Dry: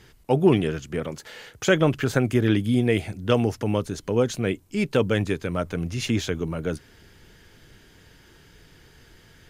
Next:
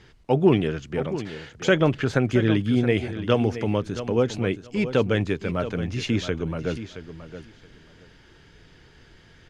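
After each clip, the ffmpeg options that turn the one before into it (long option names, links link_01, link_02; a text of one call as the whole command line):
ffmpeg -i in.wav -af "lowpass=5200,aecho=1:1:672|1344:0.251|0.0427" out.wav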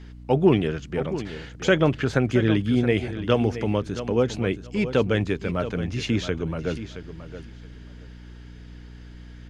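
ffmpeg -i in.wav -af "aeval=exprs='val(0)+0.00891*(sin(2*PI*60*n/s)+sin(2*PI*2*60*n/s)/2+sin(2*PI*3*60*n/s)/3+sin(2*PI*4*60*n/s)/4+sin(2*PI*5*60*n/s)/5)':channel_layout=same" out.wav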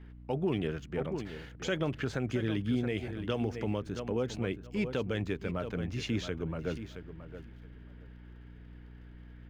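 ffmpeg -i in.wav -filter_complex "[0:a]acrossover=split=3100[link_01][link_02];[link_01]alimiter=limit=-14dB:level=0:latency=1:release=121[link_03];[link_02]aeval=exprs='sgn(val(0))*max(abs(val(0))-0.00106,0)':channel_layout=same[link_04];[link_03][link_04]amix=inputs=2:normalize=0,volume=-7.5dB" out.wav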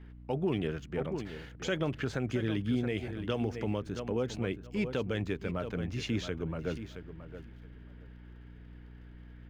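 ffmpeg -i in.wav -af anull out.wav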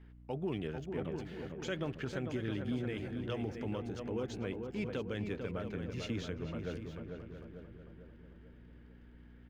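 ffmpeg -i in.wav -filter_complex "[0:a]asplit=2[link_01][link_02];[link_02]adelay=446,lowpass=frequency=1800:poles=1,volume=-5.5dB,asplit=2[link_03][link_04];[link_04]adelay=446,lowpass=frequency=1800:poles=1,volume=0.54,asplit=2[link_05][link_06];[link_06]adelay=446,lowpass=frequency=1800:poles=1,volume=0.54,asplit=2[link_07][link_08];[link_08]adelay=446,lowpass=frequency=1800:poles=1,volume=0.54,asplit=2[link_09][link_10];[link_10]adelay=446,lowpass=frequency=1800:poles=1,volume=0.54,asplit=2[link_11][link_12];[link_12]adelay=446,lowpass=frequency=1800:poles=1,volume=0.54,asplit=2[link_13][link_14];[link_14]adelay=446,lowpass=frequency=1800:poles=1,volume=0.54[link_15];[link_01][link_03][link_05][link_07][link_09][link_11][link_13][link_15]amix=inputs=8:normalize=0,volume=-6dB" out.wav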